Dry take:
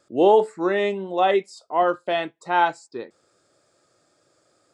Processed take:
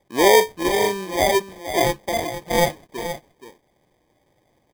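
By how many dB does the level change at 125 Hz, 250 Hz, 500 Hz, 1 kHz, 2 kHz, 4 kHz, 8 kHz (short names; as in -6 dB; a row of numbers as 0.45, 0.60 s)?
+8.5 dB, +1.0 dB, +1.0 dB, -1.0 dB, +4.5 dB, +9.0 dB, n/a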